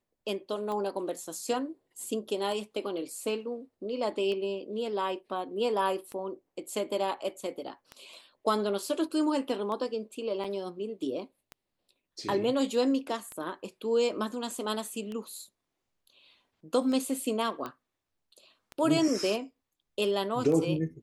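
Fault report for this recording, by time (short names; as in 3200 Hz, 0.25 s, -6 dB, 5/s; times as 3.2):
tick 33 1/3 rpm -25 dBFS
10.44 gap 4.2 ms
17.66 pop -23 dBFS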